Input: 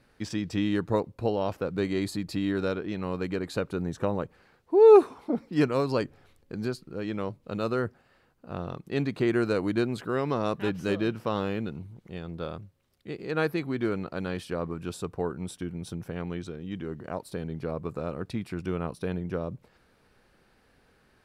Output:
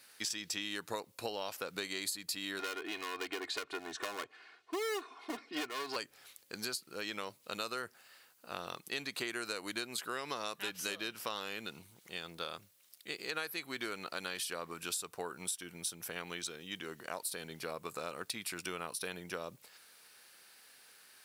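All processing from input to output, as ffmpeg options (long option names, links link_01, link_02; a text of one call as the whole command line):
ffmpeg -i in.wav -filter_complex "[0:a]asettb=1/sr,asplit=3[link_01][link_02][link_03];[link_01]atrim=end=2.594[link_04];[link_02]atrim=start=2.59:end=5.96,asetpts=PTS-STARTPTS,afade=type=in:duration=0.004:curve=qsin,afade=type=out:start_time=3.366:duration=0.004:curve=qsin,highpass=120,lowpass=3000,aeval=exprs='clip(val(0),-1,0.0376)':channel_layout=same,aecho=1:1:2.8:0.84,atrim=end_sample=148617[link_05];[link_03]atrim=start=5.956[link_06];[link_04][link_05]acrossfade=duration=0.004:curve1=hsin:curve2=qsin[link_07];[link_07][link_06]acrossfade=duration=0.004:curve1=qsin:curve2=hsin,aderivative,acompressor=threshold=-51dB:ratio=6,volume=16dB" out.wav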